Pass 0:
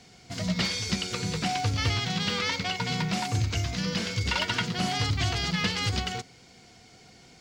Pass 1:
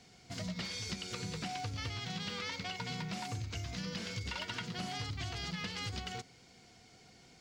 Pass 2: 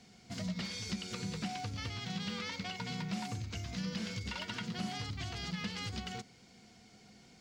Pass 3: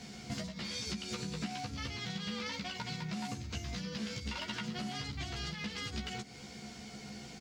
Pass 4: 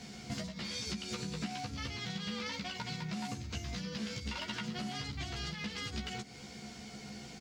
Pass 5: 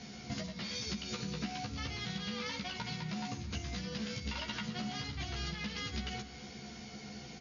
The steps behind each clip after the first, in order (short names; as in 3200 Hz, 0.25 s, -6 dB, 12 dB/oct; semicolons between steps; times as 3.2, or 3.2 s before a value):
compressor, threshold -30 dBFS, peak gain reduction 9 dB; gain -6.5 dB
bell 210 Hz +9.5 dB 0.33 oct; gain -1 dB
compressor 6:1, threshold -48 dBFS, peak gain reduction 14.5 dB; doubler 14 ms -3 dB; gain +9.5 dB
nothing audible
brick-wall FIR low-pass 7000 Hz; reverb RT60 2.4 s, pre-delay 3 ms, DRR 11.5 dB